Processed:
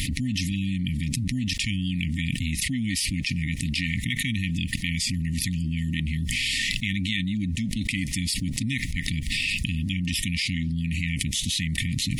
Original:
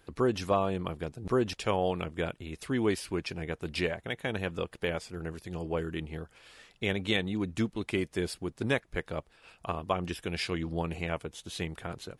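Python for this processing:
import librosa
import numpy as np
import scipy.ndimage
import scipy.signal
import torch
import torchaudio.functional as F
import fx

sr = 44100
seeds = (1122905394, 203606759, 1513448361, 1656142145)

y = fx.brickwall_bandstop(x, sr, low_hz=290.0, high_hz=1800.0)
y = fx.env_flatten(y, sr, amount_pct=100)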